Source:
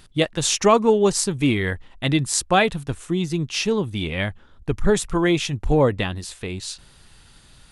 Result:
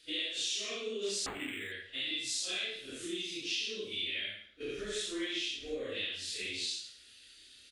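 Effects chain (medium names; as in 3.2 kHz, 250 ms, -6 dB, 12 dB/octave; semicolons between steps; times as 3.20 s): phase randomisation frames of 200 ms; frequency weighting D; gate -40 dBFS, range -7 dB; dynamic bell 3.5 kHz, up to +7 dB, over -30 dBFS, Q 0.93; compression 6:1, threshold -31 dBFS, peak gain reduction 23 dB; static phaser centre 370 Hz, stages 4; reverse bouncing-ball echo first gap 30 ms, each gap 1.2×, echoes 5; 1.26–1.72 s: decimation joined by straight lines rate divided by 8×; trim -6 dB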